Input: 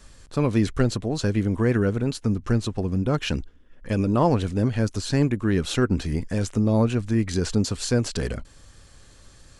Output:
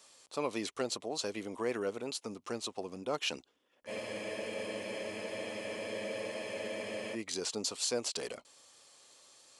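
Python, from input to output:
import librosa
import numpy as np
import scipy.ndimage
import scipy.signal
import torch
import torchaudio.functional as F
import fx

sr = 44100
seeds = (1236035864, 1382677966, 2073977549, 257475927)

y = scipy.signal.sosfilt(scipy.signal.butter(2, 600.0, 'highpass', fs=sr, output='sos'), x)
y = fx.peak_eq(y, sr, hz=1600.0, db=-11.0, octaves=0.59)
y = fx.spec_freeze(y, sr, seeds[0], at_s=3.91, hold_s=3.24)
y = F.gain(torch.from_numpy(y), -3.0).numpy()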